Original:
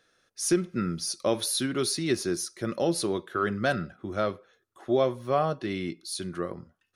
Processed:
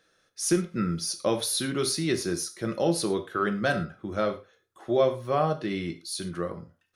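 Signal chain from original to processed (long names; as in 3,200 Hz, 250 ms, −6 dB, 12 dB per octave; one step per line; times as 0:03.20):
reverb whose tail is shaped and stops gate 140 ms falling, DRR 7 dB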